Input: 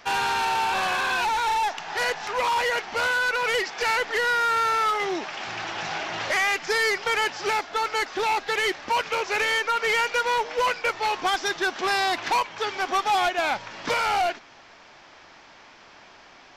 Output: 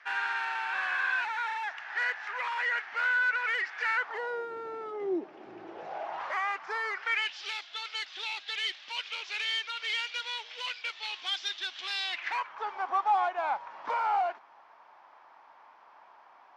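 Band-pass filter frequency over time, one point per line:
band-pass filter, Q 2.9
3.94 s 1.7 kHz
4.49 s 340 Hz
5.62 s 340 Hz
6.28 s 1.1 kHz
6.87 s 1.1 kHz
7.34 s 3.4 kHz
12.02 s 3.4 kHz
12.63 s 950 Hz

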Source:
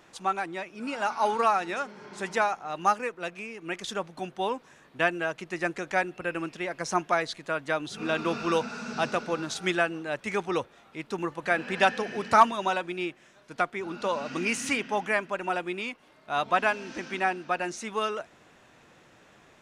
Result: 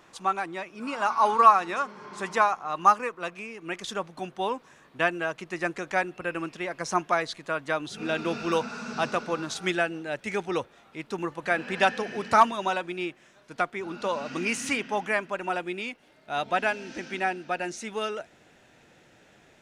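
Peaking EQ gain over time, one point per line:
peaking EQ 1.1 kHz 0.31 oct
+5 dB
from 0.82 s +12 dB
from 3.33 s +3 dB
from 7.92 s -7.5 dB
from 8.53 s +3.5 dB
from 9.69 s -7.5 dB
from 10.55 s -0.5 dB
from 15.63 s -10 dB

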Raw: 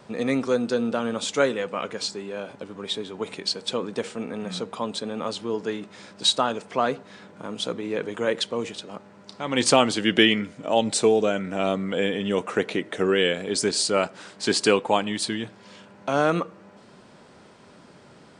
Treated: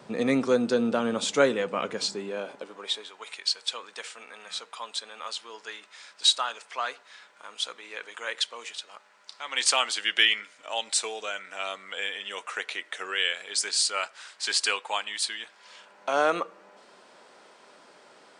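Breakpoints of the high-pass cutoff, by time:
2.14 s 120 Hz
2.49 s 310 Hz
3.20 s 1.3 kHz
15.37 s 1.3 kHz
16.19 s 500 Hz

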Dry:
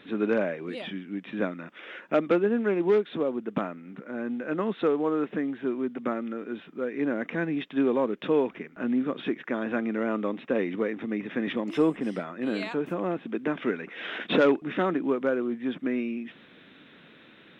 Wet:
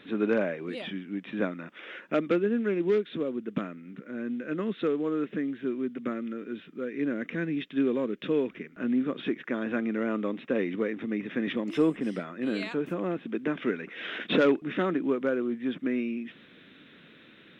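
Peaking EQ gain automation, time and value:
peaking EQ 830 Hz 0.95 oct
1.89 s -2.5 dB
2.45 s -14 dB
8.44 s -14 dB
9.00 s -6.5 dB

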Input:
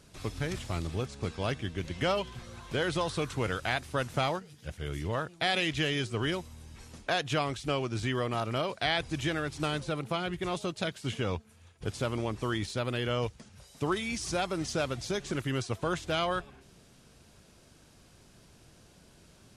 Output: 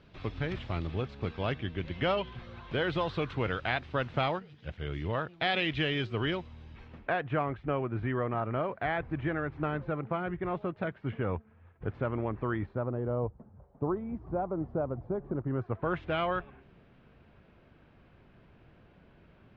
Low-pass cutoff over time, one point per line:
low-pass 24 dB/octave
6.70 s 3.5 kHz
7.29 s 1.9 kHz
12.54 s 1.9 kHz
12.95 s 1 kHz
15.41 s 1 kHz
16.02 s 2.6 kHz

